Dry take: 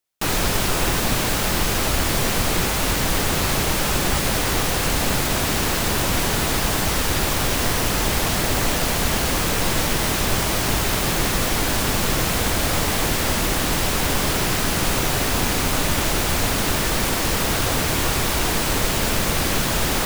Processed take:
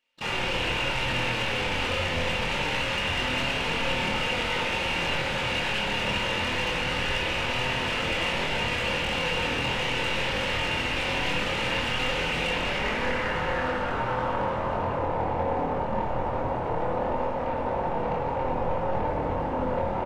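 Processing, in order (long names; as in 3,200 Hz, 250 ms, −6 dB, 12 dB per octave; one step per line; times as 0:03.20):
high-shelf EQ 4,500 Hz +11 dB
notch filter 1,100 Hz, Q 27
hum removal 71.62 Hz, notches 15
brickwall limiter −18.5 dBFS, peak gain reduction 15 dB
low-pass filter sweep 2,600 Hz → 810 Hz, 0:12.43–0:15.07
random phases in short frames
flanger 0.23 Hz, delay 4 ms, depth 7.9 ms, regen +68%
pitch-shifted copies added +7 semitones −16 dB
hollow resonant body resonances 530/900/2,800 Hz, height 10 dB
soft clipping −30.5 dBFS, distortion −14 dB
double-tracking delay 24 ms −3.5 dB
convolution reverb RT60 1.3 s, pre-delay 55 ms, DRR 0.5 dB
level +4.5 dB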